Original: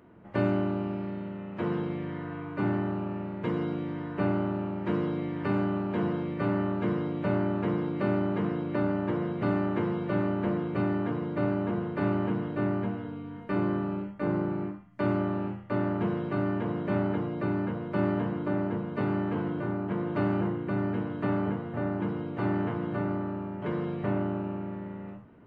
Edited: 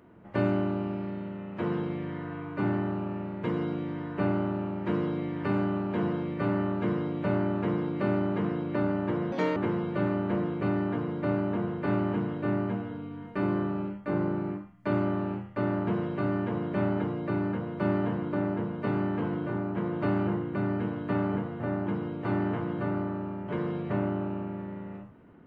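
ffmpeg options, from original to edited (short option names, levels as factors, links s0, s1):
-filter_complex "[0:a]asplit=3[s0][s1][s2];[s0]atrim=end=9.324[s3];[s1]atrim=start=9.32:end=9.7,asetpts=PTS-STARTPTS,asetrate=68796,aresample=44100,atrim=end_sample=10742,asetpts=PTS-STARTPTS[s4];[s2]atrim=start=9.696[s5];[s3][s4]acrossfade=d=0.004:c1=hsin:c2=hsin[s6];[s6][s5]acrossfade=d=0.004:c1=hsin:c2=hsin"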